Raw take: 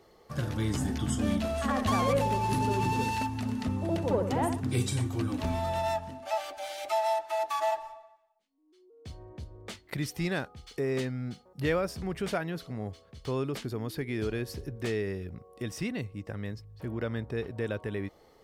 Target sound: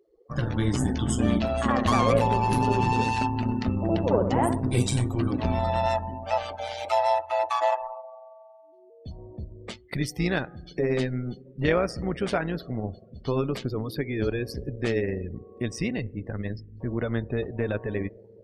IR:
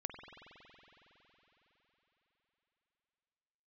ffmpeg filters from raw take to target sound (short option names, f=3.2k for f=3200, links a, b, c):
-filter_complex "[0:a]asplit=2[a][b];[1:a]atrim=start_sample=2205[c];[b][c]afir=irnorm=-1:irlink=0,volume=-12.5dB[d];[a][d]amix=inputs=2:normalize=0,tremolo=f=120:d=0.621,afftdn=nr=30:nf=-49,volume=6.5dB"